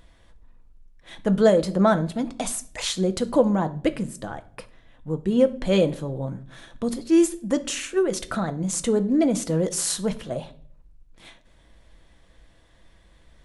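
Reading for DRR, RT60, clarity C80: 8.5 dB, 0.50 s, 21.5 dB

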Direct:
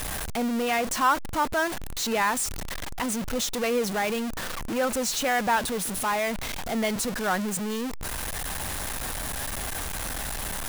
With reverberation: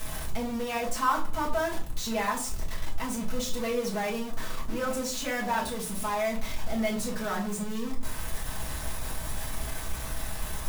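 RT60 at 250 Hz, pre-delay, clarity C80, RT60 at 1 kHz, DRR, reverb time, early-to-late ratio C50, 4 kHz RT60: 1.0 s, 4 ms, 14.0 dB, 0.45 s, -4.5 dB, 0.45 s, 9.5 dB, 0.25 s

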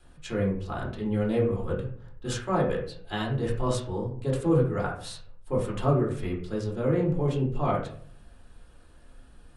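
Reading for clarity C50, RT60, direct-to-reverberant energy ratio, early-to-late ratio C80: 6.0 dB, 0.55 s, -4.0 dB, 10.0 dB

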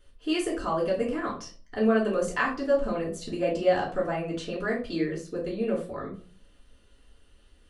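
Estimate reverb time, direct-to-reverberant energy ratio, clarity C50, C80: 0.40 s, -5.5 dB, 7.5 dB, 13.0 dB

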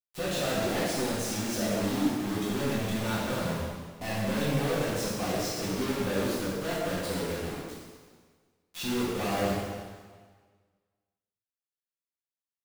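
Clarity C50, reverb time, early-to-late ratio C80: -2.0 dB, 1.6 s, 0.5 dB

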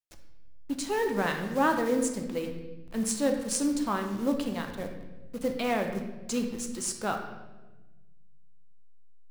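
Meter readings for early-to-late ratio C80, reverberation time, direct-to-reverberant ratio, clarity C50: 8.5 dB, 1.2 s, 4.0 dB, 6.5 dB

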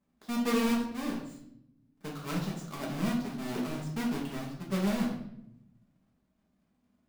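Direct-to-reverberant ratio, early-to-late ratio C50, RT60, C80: -4.0 dB, 4.5 dB, 0.75 s, 8.0 dB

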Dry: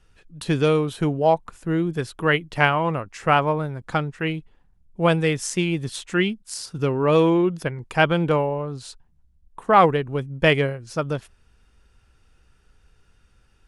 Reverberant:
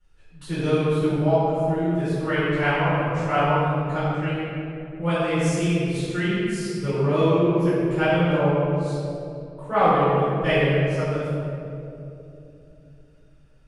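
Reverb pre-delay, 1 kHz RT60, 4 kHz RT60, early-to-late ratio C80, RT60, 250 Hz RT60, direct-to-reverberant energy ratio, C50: 4 ms, 2.3 s, 1.4 s, -2.0 dB, 2.9 s, 4.0 s, -15.0 dB, -4.5 dB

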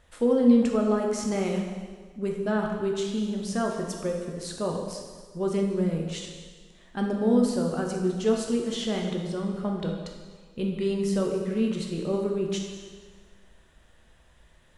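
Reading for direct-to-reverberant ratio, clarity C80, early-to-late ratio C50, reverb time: 0.5 dB, 5.0 dB, 3.5 dB, 1.6 s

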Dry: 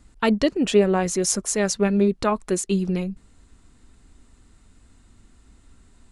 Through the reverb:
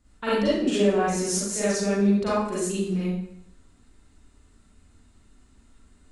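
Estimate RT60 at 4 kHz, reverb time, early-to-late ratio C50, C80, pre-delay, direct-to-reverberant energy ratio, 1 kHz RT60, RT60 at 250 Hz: 0.60 s, 0.70 s, -3.0 dB, 2.5 dB, 36 ms, -10.0 dB, 0.70 s, 0.70 s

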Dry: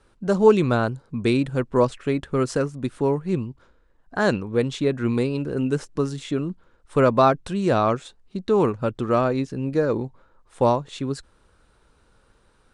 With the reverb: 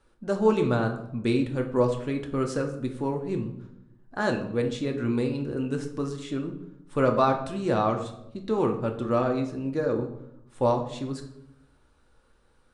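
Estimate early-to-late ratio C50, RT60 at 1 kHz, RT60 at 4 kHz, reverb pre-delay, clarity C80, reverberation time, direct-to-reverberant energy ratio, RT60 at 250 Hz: 9.5 dB, 0.70 s, 0.50 s, 3 ms, 12.0 dB, 0.80 s, 3.5 dB, 1.1 s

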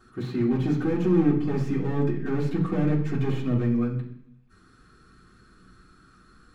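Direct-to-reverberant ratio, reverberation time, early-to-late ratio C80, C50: -8.5 dB, 0.70 s, 11.5 dB, 7.5 dB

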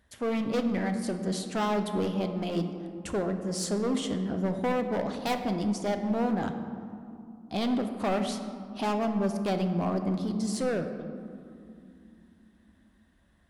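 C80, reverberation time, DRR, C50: 9.0 dB, 2.7 s, 6.0 dB, 8.0 dB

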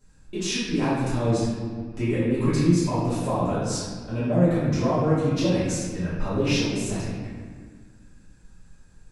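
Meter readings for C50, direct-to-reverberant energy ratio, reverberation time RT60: -2.5 dB, -12.5 dB, 1.7 s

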